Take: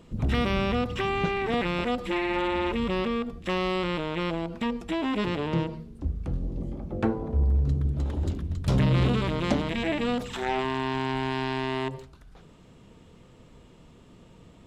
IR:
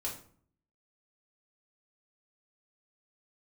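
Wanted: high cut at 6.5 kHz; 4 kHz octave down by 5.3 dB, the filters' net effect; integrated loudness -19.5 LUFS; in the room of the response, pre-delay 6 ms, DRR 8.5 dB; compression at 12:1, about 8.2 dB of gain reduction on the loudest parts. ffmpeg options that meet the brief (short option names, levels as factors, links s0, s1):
-filter_complex "[0:a]lowpass=6500,equalizer=f=4000:t=o:g=-7.5,acompressor=threshold=0.0447:ratio=12,asplit=2[s0][s1];[1:a]atrim=start_sample=2205,adelay=6[s2];[s1][s2]afir=irnorm=-1:irlink=0,volume=0.316[s3];[s0][s3]amix=inputs=2:normalize=0,volume=4.47"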